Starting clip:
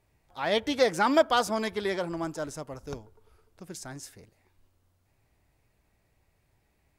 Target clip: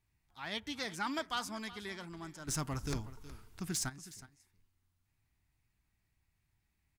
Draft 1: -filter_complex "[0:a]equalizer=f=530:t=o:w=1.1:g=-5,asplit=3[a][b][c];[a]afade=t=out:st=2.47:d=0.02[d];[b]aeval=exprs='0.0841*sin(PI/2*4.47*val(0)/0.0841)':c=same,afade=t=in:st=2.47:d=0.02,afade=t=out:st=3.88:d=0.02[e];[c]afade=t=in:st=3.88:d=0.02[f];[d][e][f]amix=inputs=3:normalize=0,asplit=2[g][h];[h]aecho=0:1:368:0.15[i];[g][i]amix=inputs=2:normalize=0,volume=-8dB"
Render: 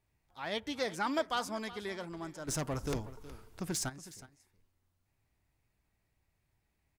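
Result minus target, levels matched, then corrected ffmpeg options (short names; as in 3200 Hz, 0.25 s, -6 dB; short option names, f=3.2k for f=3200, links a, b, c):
500 Hz band +6.0 dB
-filter_complex "[0:a]equalizer=f=530:t=o:w=1.1:g=-16.5,asplit=3[a][b][c];[a]afade=t=out:st=2.47:d=0.02[d];[b]aeval=exprs='0.0841*sin(PI/2*4.47*val(0)/0.0841)':c=same,afade=t=in:st=2.47:d=0.02,afade=t=out:st=3.88:d=0.02[e];[c]afade=t=in:st=3.88:d=0.02[f];[d][e][f]amix=inputs=3:normalize=0,asplit=2[g][h];[h]aecho=0:1:368:0.15[i];[g][i]amix=inputs=2:normalize=0,volume=-8dB"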